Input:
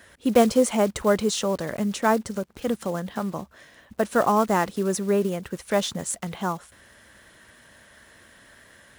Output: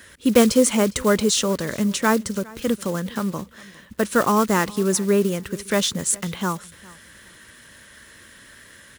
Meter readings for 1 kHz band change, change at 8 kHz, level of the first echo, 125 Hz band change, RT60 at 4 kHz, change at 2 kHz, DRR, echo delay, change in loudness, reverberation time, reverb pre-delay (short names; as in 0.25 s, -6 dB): 0.0 dB, +8.0 dB, -22.5 dB, +4.5 dB, none, +5.0 dB, none, 0.408 s, +3.5 dB, none, none